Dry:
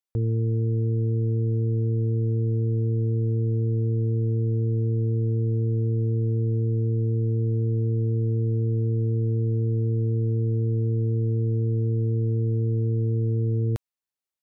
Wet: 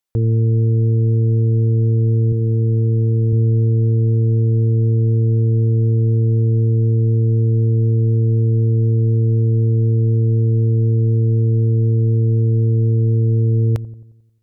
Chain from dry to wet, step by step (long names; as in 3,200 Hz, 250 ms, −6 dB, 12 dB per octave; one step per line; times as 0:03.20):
0:02.32–0:03.33: high-pass filter 75 Hz 12 dB per octave
on a send: delay with a low-pass on its return 89 ms, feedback 52%, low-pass 460 Hz, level −15.5 dB
on the sum: level +7.5 dB